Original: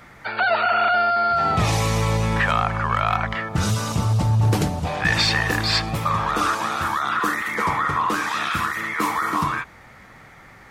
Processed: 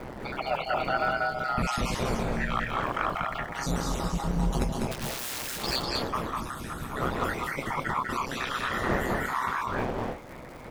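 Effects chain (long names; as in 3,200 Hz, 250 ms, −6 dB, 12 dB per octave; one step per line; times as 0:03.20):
time-frequency cells dropped at random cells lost 51%
wind on the microphone 630 Hz −30 dBFS
0:06.21–0:06.96: gain on a spectral selection 280–7,800 Hz −10 dB
in parallel at −2 dB: downward compressor, threshold −32 dBFS, peak gain reduction 17.5 dB
on the sum: surface crackle 210 per second −34 dBFS
0:02.03–0:02.53: tuned comb filter 58 Hz, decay 0.18 s, harmonics all, mix 80%
0:04.91–0:05.63: wrap-around overflow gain 23 dB
ring modulation 64 Hz
multi-tap delay 198/224 ms −3/−8 dB
level −6 dB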